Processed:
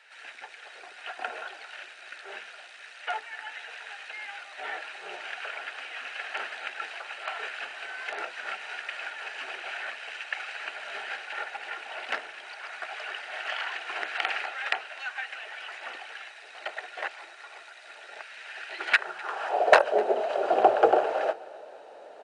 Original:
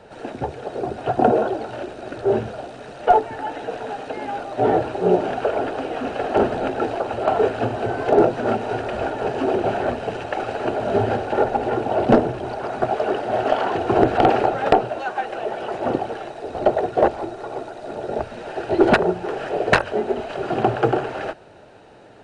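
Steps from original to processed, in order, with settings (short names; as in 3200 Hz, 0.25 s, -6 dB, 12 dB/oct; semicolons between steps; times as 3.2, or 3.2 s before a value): high-pass sweep 2000 Hz -> 570 Hz, 18.93–19.79; on a send: feedback echo 0.253 s, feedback 43%, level -22 dB; on the sum: gain -4 dB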